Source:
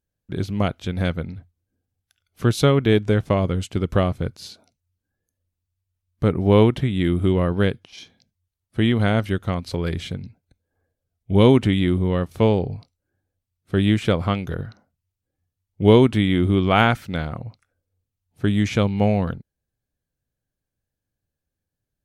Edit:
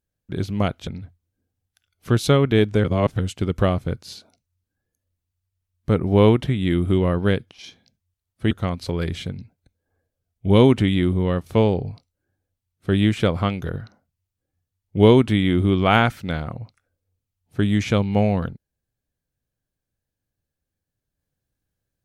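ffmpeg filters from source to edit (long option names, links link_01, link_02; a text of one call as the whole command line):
ffmpeg -i in.wav -filter_complex "[0:a]asplit=5[link_01][link_02][link_03][link_04][link_05];[link_01]atrim=end=0.872[link_06];[link_02]atrim=start=1.208:end=3.182[link_07];[link_03]atrim=start=3.178:end=3.532,asetpts=PTS-STARTPTS,areverse[link_08];[link_04]atrim=start=3.528:end=8.852[link_09];[link_05]atrim=start=9.358[link_10];[link_06][link_07]acrossfade=duration=0.004:curve1=hsin:curve2=hsin[link_11];[link_11][link_08]acrossfade=duration=0.004:curve1=hsin:curve2=hsin[link_12];[link_12][link_09]acrossfade=duration=0.004:curve1=hsin:curve2=hsin[link_13];[link_13][link_10]acrossfade=duration=0.004:curve1=hsin:curve2=hsin" out.wav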